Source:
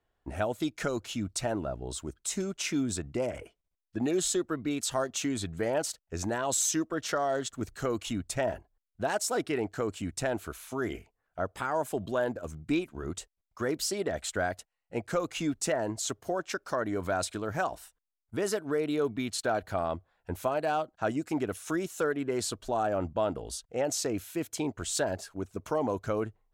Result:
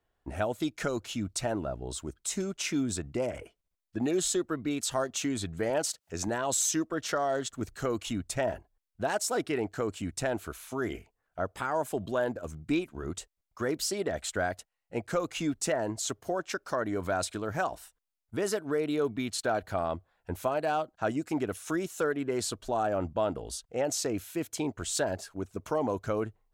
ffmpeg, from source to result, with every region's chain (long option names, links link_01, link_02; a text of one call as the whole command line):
ffmpeg -i in.wav -filter_complex "[0:a]asettb=1/sr,asplit=3[link_01][link_02][link_03];[link_01]atrim=end=5.704[link_04];[link_02]atrim=start=5.7:end=6.28,asetpts=PTS-STARTPTS,afade=type=in:duration=0.004:curve=qsin,afade=type=out:start_time=0.576:duration=0.004:curve=qsin,equalizer=frequency=6200:width_type=o:width=2:gain=3,acompressor=mode=upward:threshold=-40dB:ratio=2.5:attack=3.2:release=140:knee=2.83:detection=peak,highpass=97[link_05];[link_03]atrim=start=6.276[link_06];[link_04][link_05]acrossfade=duration=0.004:curve1=hsin:curve2=qsin[link_07];[link_07][link_06]acrossfade=duration=0.004:curve1=qsin:curve2=hsin" out.wav